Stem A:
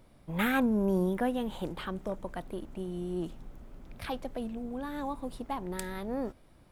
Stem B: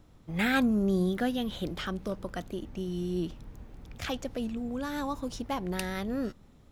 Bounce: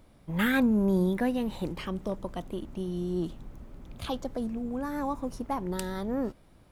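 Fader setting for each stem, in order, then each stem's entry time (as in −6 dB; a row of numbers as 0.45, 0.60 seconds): +0.5, −7.0 decibels; 0.00, 0.00 seconds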